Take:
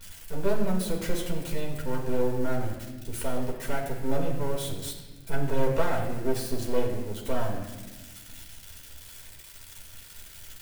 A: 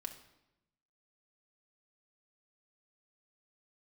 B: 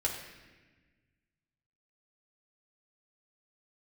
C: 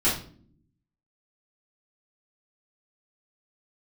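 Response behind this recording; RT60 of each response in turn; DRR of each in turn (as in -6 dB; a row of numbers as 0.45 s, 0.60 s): B; 0.90 s, 1.3 s, 0.50 s; 3.5 dB, -2.0 dB, -11.0 dB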